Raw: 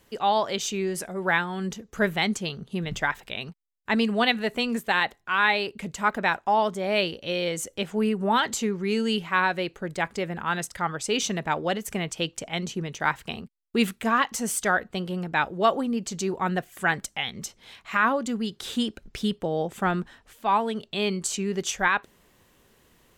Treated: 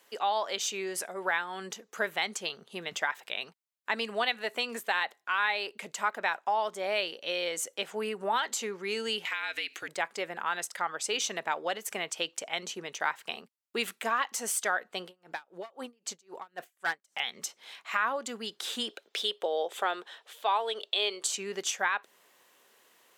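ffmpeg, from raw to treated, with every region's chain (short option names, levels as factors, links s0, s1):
-filter_complex "[0:a]asettb=1/sr,asplit=3[s0][s1][s2];[s0]atrim=end=9.254[s3];[s1]atrim=start=9.25:end=9.88,asetpts=PTS-STARTPTS,afade=t=in:d=0.004:c=qsin,afade=t=out:st=0.626:d=0.004:c=qsin,highshelf=f=1600:t=q:w=1.5:g=11.5,acompressor=threshold=0.0316:ratio=4:attack=3.2:release=140:knee=1:detection=peak,afreqshift=-71[s4];[s2]atrim=start=9.876[s5];[s3][s4]acrossfade=d=0.004:c1=hsin:c2=qsin[s6];[s6][s5]acrossfade=d=0.004:c1=qsin:c2=hsin,asettb=1/sr,asplit=3[s7][s8][s9];[s7]atrim=end=15.054[s10];[s8]atrim=start=15.05:end=17.2,asetpts=PTS-STARTPTS,afade=t=in:d=0.004:c=qsin,afade=t=out:st=2.146:d=0.004:c=qsin,aeval=exprs='clip(val(0),-1,0.106)':c=same,aeval=exprs='val(0)*pow(10,-35*(0.5-0.5*cos(2*PI*3.8*n/s))/20)':c=same[s11];[s9]atrim=start=17.196[s12];[s10][s11]acrossfade=d=0.004:c1=hsin:c2=qsin[s13];[s13][s12]acrossfade=d=0.004:c1=qsin:c2=hsin,asettb=1/sr,asplit=3[s14][s15][s16];[s14]atrim=end=18.894[s17];[s15]atrim=start=18.89:end=21.31,asetpts=PTS-STARTPTS,afade=t=in:d=0.004:c=qsin,afade=t=out:st=2.416:d=0.004:c=qsin,highpass=f=440:t=q:w=1.8,equalizer=f=3500:w=2.5:g=10[s18];[s16]atrim=start=21.306[s19];[s17][s18]acrossfade=d=0.004:c1=hsin:c2=qsin[s20];[s20][s19]acrossfade=d=0.004:c1=qsin:c2=hsin,highpass=540,acompressor=threshold=0.0355:ratio=2"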